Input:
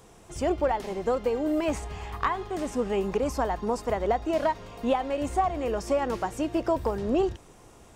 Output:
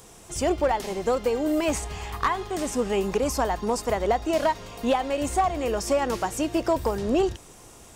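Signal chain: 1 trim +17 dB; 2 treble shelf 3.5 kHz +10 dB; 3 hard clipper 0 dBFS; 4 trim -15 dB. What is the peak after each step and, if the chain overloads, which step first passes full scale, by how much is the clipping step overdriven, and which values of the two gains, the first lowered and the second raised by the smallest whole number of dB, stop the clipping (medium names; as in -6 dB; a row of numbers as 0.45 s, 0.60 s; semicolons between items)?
+4.0 dBFS, +7.0 dBFS, 0.0 dBFS, -15.0 dBFS; step 1, 7.0 dB; step 1 +10 dB, step 4 -8 dB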